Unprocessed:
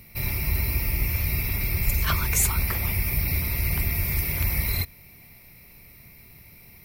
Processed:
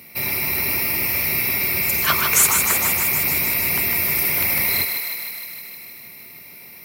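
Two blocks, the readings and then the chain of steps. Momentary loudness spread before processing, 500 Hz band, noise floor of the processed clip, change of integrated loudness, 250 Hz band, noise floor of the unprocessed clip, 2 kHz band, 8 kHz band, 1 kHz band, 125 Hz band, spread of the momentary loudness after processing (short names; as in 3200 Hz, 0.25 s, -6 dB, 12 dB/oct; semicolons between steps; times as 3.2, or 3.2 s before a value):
4 LU, +8.0 dB, -41 dBFS, +7.5 dB, +3.0 dB, -50 dBFS, +9.5 dB, +9.5 dB, +9.5 dB, -8.5 dB, 17 LU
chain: HPF 250 Hz 12 dB/oct; on a send: thinning echo 0.154 s, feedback 73%, high-pass 430 Hz, level -5.5 dB; on the sum: gain +7.5 dB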